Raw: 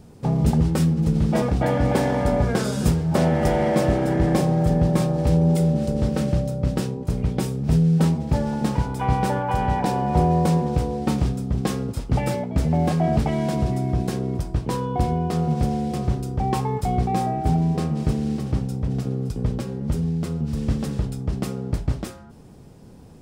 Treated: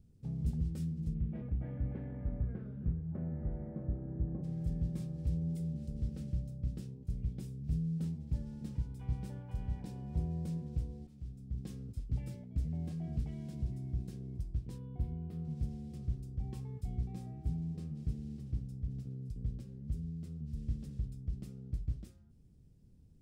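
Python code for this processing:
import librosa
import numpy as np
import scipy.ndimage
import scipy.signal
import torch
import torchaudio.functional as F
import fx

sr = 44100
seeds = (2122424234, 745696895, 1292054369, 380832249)

y = fx.lowpass(x, sr, hz=fx.line((1.13, 2600.0), (4.43, 1200.0)), slope=24, at=(1.13, 4.43), fade=0.02)
y = fx.peak_eq(y, sr, hz=6700.0, db=-11.5, octaves=1.5, at=(14.78, 15.45))
y = fx.edit(y, sr, fx.fade_in_from(start_s=11.07, length_s=0.64, floor_db=-22.0), tone=tone)
y = fx.tone_stack(y, sr, knobs='10-0-1')
y = y * librosa.db_to_amplitude(-3.5)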